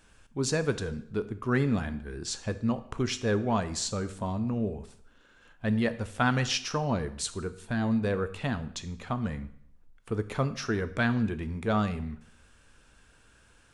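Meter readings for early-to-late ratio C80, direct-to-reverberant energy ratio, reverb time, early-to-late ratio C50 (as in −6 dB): 17.5 dB, 11.0 dB, 0.65 s, 14.5 dB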